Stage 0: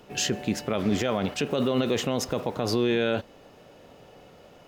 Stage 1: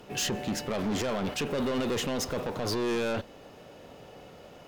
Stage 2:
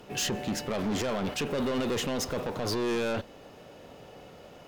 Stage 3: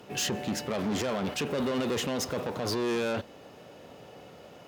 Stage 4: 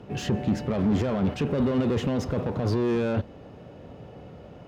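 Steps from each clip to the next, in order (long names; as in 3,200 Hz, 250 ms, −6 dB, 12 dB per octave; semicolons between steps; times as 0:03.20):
harmonic generator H 8 −28 dB, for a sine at −14.5 dBFS; soft clipping −28 dBFS, distortion −7 dB; level +2 dB
no processing that can be heard
high-pass filter 77 Hz
RIAA equalisation playback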